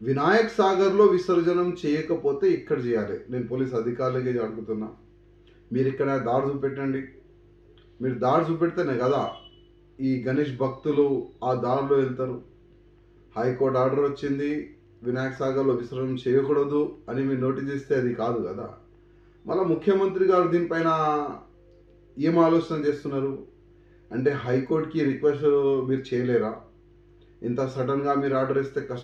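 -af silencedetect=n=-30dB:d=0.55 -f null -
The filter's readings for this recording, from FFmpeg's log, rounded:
silence_start: 4.87
silence_end: 5.72 | silence_duration: 0.85
silence_start: 7.04
silence_end: 8.01 | silence_duration: 0.98
silence_start: 9.32
silence_end: 10.00 | silence_duration: 0.68
silence_start: 12.37
silence_end: 13.36 | silence_duration: 0.99
silence_start: 18.66
silence_end: 19.47 | silence_duration: 0.81
silence_start: 21.36
silence_end: 22.18 | silence_duration: 0.82
silence_start: 23.36
silence_end: 24.12 | silence_duration: 0.76
silence_start: 26.54
silence_end: 27.44 | silence_duration: 0.90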